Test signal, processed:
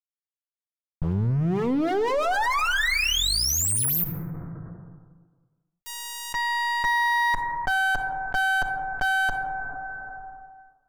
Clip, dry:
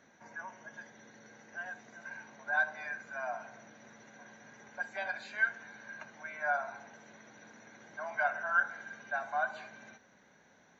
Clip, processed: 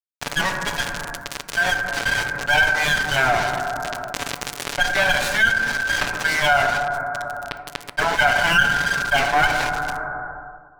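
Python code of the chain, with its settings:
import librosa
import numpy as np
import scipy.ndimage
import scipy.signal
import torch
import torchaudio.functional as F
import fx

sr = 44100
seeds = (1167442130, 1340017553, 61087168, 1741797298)

p1 = fx.lower_of_two(x, sr, delay_ms=7.0)
p2 = fx.dynamic_eq(p1, sr, hz=1800.0, q=1.6, threshold_db=-50.0, ratio=4.0, max_db=3)
p3 = fx.rider(p2, sr, range_db=3, speed_s=0.5)
p4 = p2 + (p3 * 10.0 ** (-3.0 / 20.0))
p5 = np.sign(p4) * np.maximum(np.abs(p4) - 10.0 ** (-44.0 / 20.0), 0.0)
p6 = fx.rev_plate(p5, sr, seeds[0], rt60_s=1.5, hf_ratio=0.25, predelay_ms=0, drr_db=15.0)
p7 = fx.env_flatten(p6, sr, amount_pct=70)
y = p7 * 10.0 ** (6.0 / 20.0)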